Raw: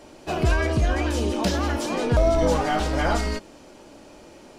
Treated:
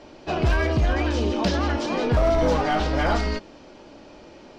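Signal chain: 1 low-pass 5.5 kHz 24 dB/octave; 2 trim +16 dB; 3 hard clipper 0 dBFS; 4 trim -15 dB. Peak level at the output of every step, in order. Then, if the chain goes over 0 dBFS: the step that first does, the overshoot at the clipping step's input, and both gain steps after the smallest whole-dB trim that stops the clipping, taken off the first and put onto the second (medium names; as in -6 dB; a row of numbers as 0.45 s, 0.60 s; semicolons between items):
-10.0 dBFS, +6.0 dBFS, 0.0 dBFS, -15.0 dBFS; step 2, 6.0 dB; step 2 +10 dB, step 4 -9 dB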